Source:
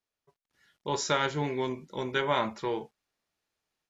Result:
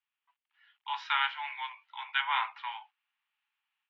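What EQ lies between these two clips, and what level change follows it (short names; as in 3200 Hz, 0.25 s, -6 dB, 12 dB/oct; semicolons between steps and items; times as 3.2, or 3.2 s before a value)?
steep high-pass 810 Hz 72 dB/oct; synth low-pass 2900 Hz, resonance Q 3.3; air absorption 250 m; 0.0 dB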